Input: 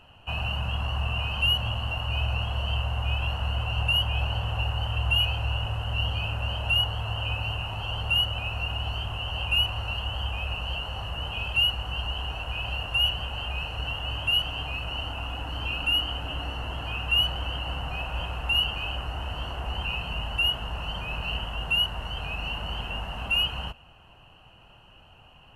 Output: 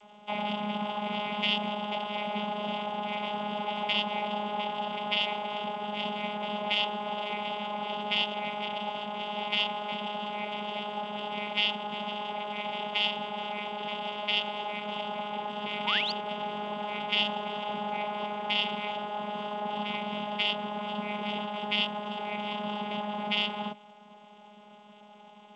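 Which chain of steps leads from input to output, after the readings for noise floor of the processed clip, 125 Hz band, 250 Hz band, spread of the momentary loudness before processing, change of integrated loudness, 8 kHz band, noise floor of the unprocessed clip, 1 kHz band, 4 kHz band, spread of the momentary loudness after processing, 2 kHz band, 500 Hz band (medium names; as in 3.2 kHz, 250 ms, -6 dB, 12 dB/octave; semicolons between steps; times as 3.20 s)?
-53 dBFS, -17.5 dB, +7.0 dB, 9 LU, -4.0 dB, no reading, -53 dBFS, +5.0 dB, -5.5 dB, 7 LU, -4.5 dB, +5.5 dB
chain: peaking EQ 750 Hz +9 dB 0.58 oct; vocoder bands 16, saw 208 Hz; painted sound rise, 15.86–16.12 s, 840–5000 Hz -30 dBFS; trim -2.5 dB; G.722 64 kbps 16 kHz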